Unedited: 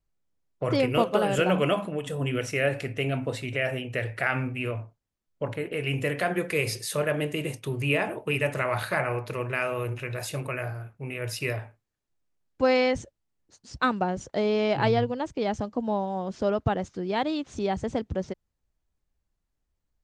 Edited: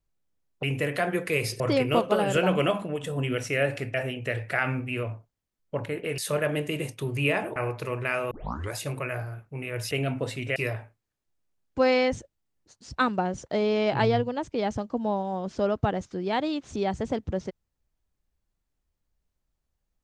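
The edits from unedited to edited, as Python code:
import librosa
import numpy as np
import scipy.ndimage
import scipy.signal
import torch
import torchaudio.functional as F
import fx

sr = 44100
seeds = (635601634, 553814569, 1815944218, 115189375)

y = fx.edit(x, sr, fx.move(start_s=2.97, length_s=0.65, to_s=11.39),
    fx.move(start_s=5.86, length_s=0.97, to_s=0.63),
    fx.cut(start_s=8.21, length_s=0.83),
    fx.tape_start(start_s=9.79, length_s=0.43), tone=tone)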